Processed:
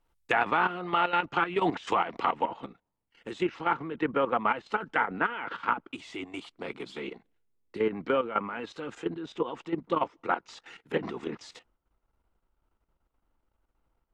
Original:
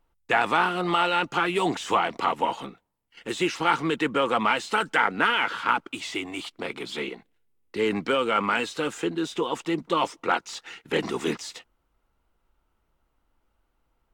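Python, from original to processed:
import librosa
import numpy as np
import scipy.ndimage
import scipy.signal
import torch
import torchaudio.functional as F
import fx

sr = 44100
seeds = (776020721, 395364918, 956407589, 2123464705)

y = fx.high_shelf(x, sr, hz=2100.0, db=fx.steps((0.0, 3.5), (2.44, -7.0)))
y = fx.env_lowpass_down(y, sr, base_hz=2200.0, full_db=-22.0)
y = fx.level_steps(y, sr, step_db=12)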